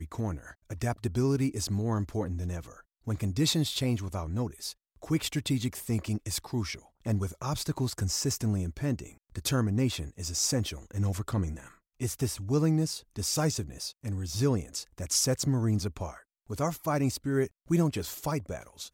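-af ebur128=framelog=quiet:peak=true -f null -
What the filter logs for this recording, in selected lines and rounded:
Integrated loudness:
  I:         -30.8 LUFS
  Threshold: -41.1 LUFS
Loudness range:
  LRA:         2.5 LU
  Threshold: -51.0 LUFS
  LRA low:   -32.2 LUFS
  LRA high:  -29.8 LUFS
True peak:
  Peak:      -14.7 dBFS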